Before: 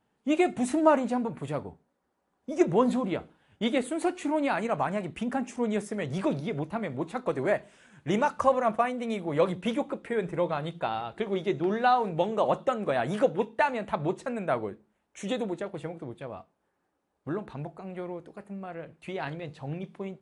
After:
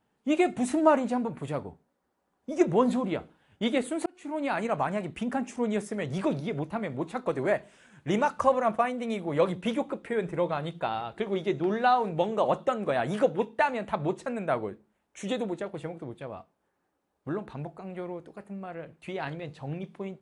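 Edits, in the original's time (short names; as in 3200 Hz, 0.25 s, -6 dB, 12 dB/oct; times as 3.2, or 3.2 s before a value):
4.06–4.6 fade in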